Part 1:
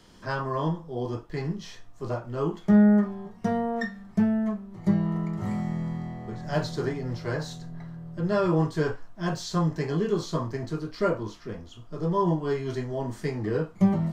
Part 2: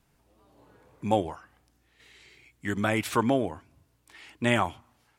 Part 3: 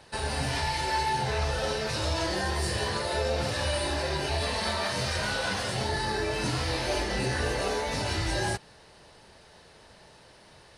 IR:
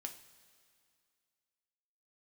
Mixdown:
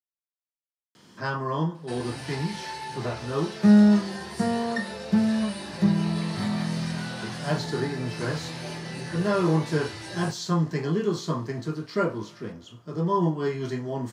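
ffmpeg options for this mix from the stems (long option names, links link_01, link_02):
-filter_complex "[0:a]adelay=950,volume=-0.5dB,asplit=2[link_01][link_02];[link_02]volume=-6dB[link_03];[2:a]adelay=1750,volume=-7dB[link_04];[3:a]atrim=start_sample=2205[link_05];[link_03][link_05]afir=irnorm=-1:irlink=0[link_06];[link_01][link_04][link_06]amix=inputs=3:normalize=0,highpass=frequency=110:width=0.5412,highpass=frequency=110:width=1.3066,equalizer=frequency=610:width=1.4:gain=-3.5"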